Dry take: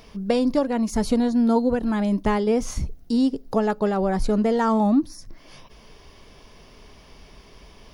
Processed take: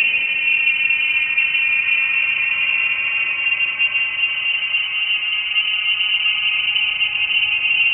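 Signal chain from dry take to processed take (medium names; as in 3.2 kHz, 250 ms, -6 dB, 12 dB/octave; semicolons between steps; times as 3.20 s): Paulstretch 12×, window 0.50 s, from 0.47 s; frequency inversion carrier 3 kHz; trim +3.5 dB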